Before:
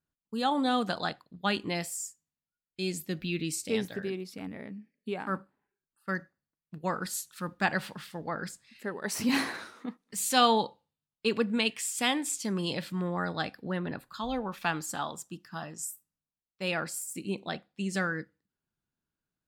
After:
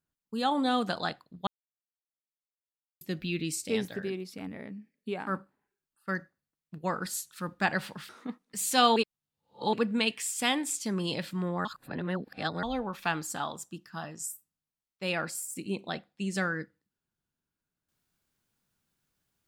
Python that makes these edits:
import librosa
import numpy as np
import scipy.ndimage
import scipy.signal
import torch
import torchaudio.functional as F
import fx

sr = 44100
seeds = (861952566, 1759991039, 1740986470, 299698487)

y = fx.edit(x, sr, fx.silence(start_s=1.47, length_s=1.54),
    fx.cut(start_s=8.09, length_s=1.59),
    fx.reverse_span(start_s=10.55, length_s=0.77),
    fx.reverse_span(start_s=13.24, length_s=0.98), tone=tone)